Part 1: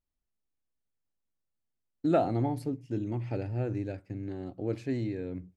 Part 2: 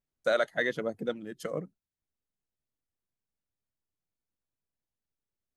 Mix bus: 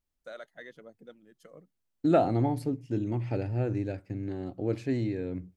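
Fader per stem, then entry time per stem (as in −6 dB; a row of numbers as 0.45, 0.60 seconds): +2.5, −17.5 decibels; 0.00, 0.00 seconds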